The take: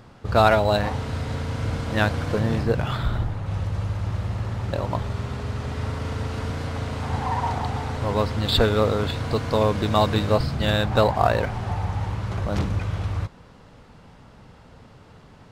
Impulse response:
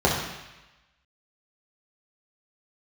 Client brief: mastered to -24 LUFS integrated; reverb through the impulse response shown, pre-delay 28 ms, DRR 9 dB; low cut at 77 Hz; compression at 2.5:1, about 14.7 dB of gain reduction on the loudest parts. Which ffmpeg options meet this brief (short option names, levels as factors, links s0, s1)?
-filter_complex "[0:a]highpass=77,acompressor=threshold=0.0158:ratio=2.5,asplit=2[s0][s1];[1:a]atrim=start_sample=2205,adelay=28[s2];[s1][s2]afir=irnorm=-1:irlink=0,volume=0.0422[s3];[s0][s3]amix=inputs=2:normalize=0,volume=3.35"